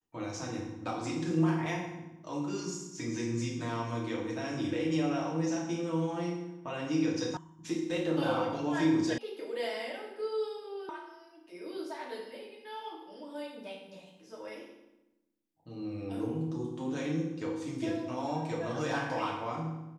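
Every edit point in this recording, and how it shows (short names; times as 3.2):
7.37 sound cut off
9.18 sound cut off
10.89 sound cut off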